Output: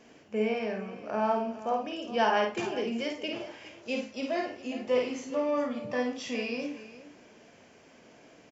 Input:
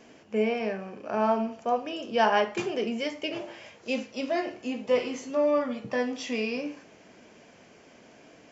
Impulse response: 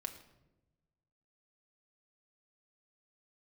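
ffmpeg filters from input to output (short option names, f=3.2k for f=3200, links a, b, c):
-af "aecho=1:1:52|413:0.596|0.178,volume=-3.5dB"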